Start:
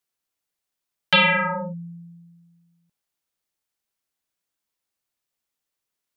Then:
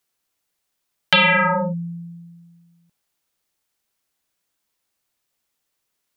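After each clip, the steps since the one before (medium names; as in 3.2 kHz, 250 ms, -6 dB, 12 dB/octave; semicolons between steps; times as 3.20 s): compression 2.5:1, threshold -23 dBFS, peak gain reduction 6.5 dB; trim +7.5 dB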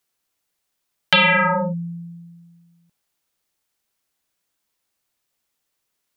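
no audible change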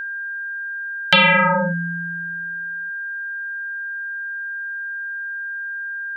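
whistle 1.6 kHz -27 dBFS; trim +1.5 dB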